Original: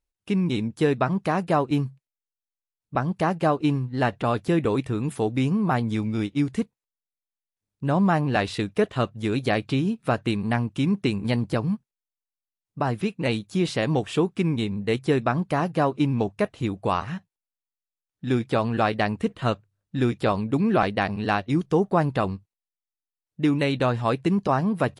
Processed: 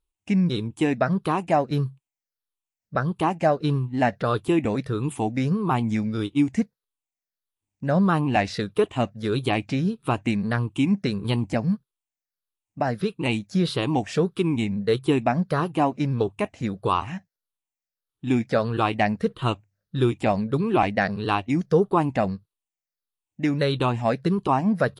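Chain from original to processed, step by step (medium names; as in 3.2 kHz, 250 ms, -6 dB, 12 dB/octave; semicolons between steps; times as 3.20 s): drifting ripple filter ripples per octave 0.63, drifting -1.6 Hz, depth 11 dB; 13.94–14.58 s: tape noise reduction on one side only encoder only; trim -1 dB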